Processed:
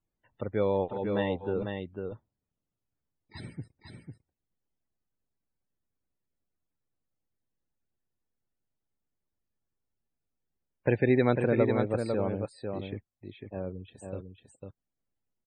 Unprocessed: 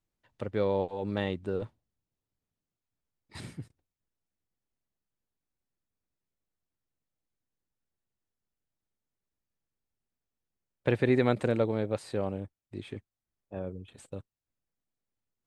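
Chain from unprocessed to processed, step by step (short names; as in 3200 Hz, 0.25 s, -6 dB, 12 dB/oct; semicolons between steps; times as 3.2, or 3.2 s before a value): loudest bins only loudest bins 64; on a send: echo 0.499 s -5.5 dB; on the sum: gain +1 dB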